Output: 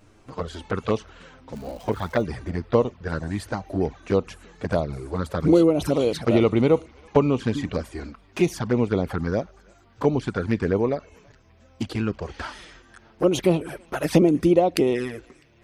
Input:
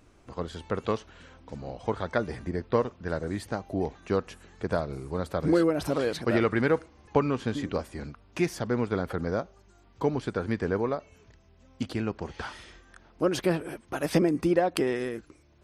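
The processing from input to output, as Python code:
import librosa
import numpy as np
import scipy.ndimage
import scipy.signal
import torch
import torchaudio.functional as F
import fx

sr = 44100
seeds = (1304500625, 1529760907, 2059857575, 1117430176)

y = fx.env_flanger(x, sr, rest_ms=10.3, full_db=-23.0)
y = fx.dmg_crackle(y, sr, seeds[0], per_s=350.0, level_db=-45.0, at=(1.55, 2.21), fade=0.02)
y = fx.echo_banded(y, sr, ms=327, feedback_pct=58, hz=2300.0, wet_db=-24.0)
y = y * librosa.db_to_amplitude(7.0)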